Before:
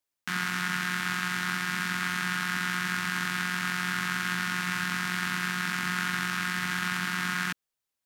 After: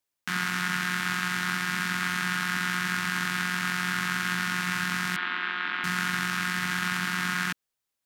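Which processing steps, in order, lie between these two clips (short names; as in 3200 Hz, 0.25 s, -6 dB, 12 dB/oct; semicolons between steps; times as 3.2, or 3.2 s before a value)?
5.16–5.84 elliptic band-pass 270–3500 Hz, stop band 40 dB; gain +1.5 dB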